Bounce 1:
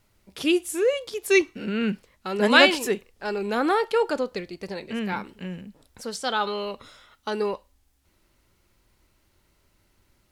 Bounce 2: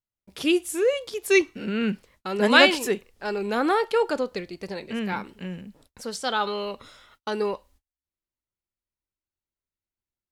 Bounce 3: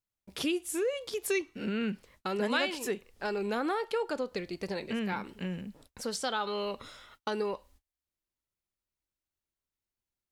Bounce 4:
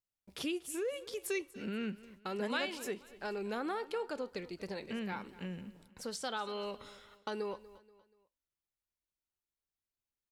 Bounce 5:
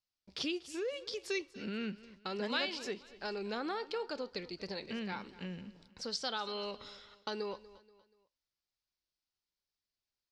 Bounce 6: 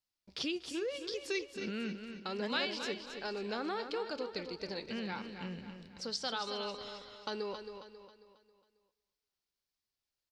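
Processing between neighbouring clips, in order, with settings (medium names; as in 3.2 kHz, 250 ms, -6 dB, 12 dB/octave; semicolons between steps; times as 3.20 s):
gate -56 dBFS, range -32 dB
compression 3:1, threshold -31 dBFS, peak gain reduction 15.5 dB
feedback delay 240 ms, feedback 40%, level -18.5 dB; trim -6 dB
resonant low-pass 4.9 kHz, resonance Q 3.1; trim -1 dB
feedback delay 271 ms, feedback 42%, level -8.5 dB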